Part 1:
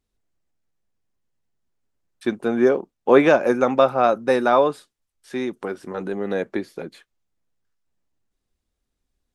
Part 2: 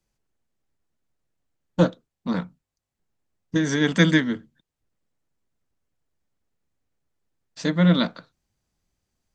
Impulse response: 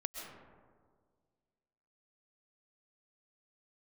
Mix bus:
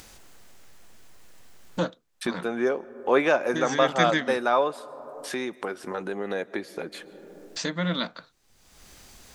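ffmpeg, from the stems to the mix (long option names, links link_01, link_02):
-filter_complex "[0:a]volume=-3.5dB,asplit=2[link_01][link_02];[link_02]volume=-18dB[link_03];[1:a]volume=-3dB[link_04];[2:a]atrim=start_sample=2205[link_05];[link_03][link_05]afir=irnorm=-1:irlink=0[link_06];[link_01][link_04][link_06]amix=inputs=3:normalize=0,lowshelf=frequency=410:gain=-10.5,acompressor=mode=upward:threshold=-24dB:ratio=2.5"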